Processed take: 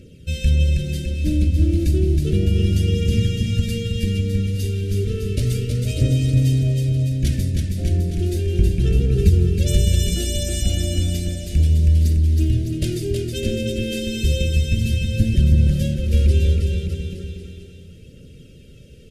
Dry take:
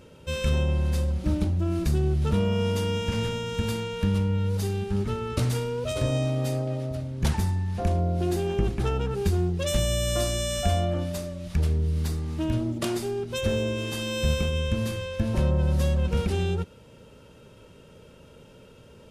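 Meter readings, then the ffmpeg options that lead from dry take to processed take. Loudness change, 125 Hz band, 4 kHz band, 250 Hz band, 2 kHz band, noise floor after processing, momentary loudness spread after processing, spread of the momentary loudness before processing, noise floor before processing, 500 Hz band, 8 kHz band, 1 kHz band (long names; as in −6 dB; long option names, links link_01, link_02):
+7.0 dB, +8.5 dB, +4.0 dB, +5.0 dB, +1.5 dB, −43 dBFS, 7 LU, 5 LU, −51 dBFS, +0.5 dB, +4.5 dB, below −15 dB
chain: -filter_complex "[0:a]lowshelf=frequency=170:gain=4.5,aphaser=in_gain=1:out_gain=1:delay=3.9:decay=0.42:speed=0.33:type=triangular,asuperstop=centerf=970:order=4:qfactor=0.55,asplit=2[link_01][link_02];[link_02]aecho=0:1:320|608|867.2|1100|1310:0.631|0.398|0.251|0.158|0.1[link_03];[link_01][link_03]amix=inputs=2:normalize=0,volume=1.5dB"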